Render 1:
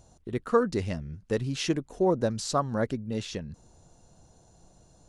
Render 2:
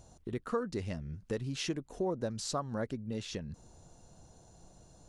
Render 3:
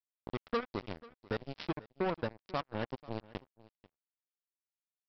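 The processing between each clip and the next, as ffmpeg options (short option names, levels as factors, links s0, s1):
-af "acompressor=threshold=0.0126:ratio=2"
-af "aresample=11025,acrusher=bits=4:mix=0:aa=0.5,aresample=44100,aecho=1:1:490:0.0891,volume=0.891"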